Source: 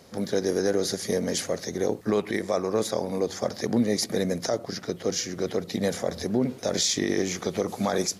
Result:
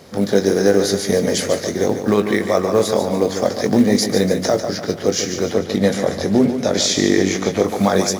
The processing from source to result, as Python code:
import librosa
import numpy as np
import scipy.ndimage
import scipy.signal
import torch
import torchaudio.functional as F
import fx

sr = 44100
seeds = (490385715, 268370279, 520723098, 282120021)

p1 = fx.bass_treble(x, sr, bass_db=0, treble_db=-3)
p2 = fx.doubler(p1, sr, ms=20.0, db=-8)
p3 = fx.echo_feedback(p2, sr, ms=146, feedback_pct=42, wet_db=-8.5)
p4 = fx.quant_float(p3, sr, bits=2)
p5 = p3 + (p4 * librosa.db_to_amplitude(-5.5))
p6 = fx.high_shelf(p5, sr, hz=12000.0, db=-9.5, at=(5.54, 7.64))
y = p6 * librosa.db_to_amplitude(5.0)